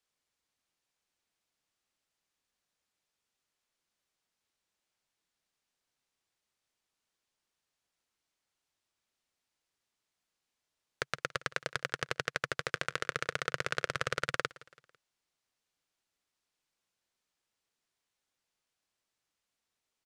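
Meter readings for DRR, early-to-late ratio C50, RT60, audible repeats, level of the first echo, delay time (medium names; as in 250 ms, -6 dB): no reverb, no reverb, no reverb, 3, -21.0 dB, 166 ms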